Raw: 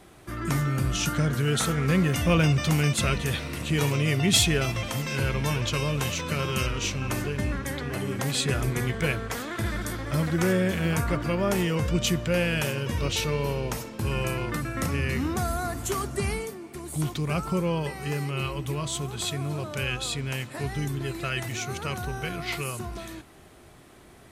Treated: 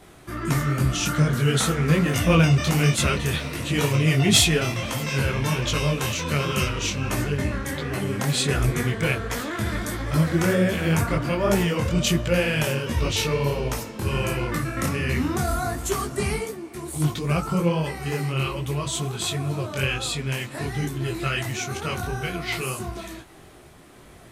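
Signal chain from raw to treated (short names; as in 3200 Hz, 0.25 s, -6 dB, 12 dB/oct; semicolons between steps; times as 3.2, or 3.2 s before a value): detuned doubles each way 48 cents; gain +7 dB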